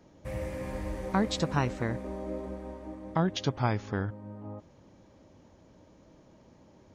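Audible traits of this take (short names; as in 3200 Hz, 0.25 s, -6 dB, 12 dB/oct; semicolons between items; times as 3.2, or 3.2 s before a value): noise floor -59 dBFS; spectral tilt -5.5 dB/oct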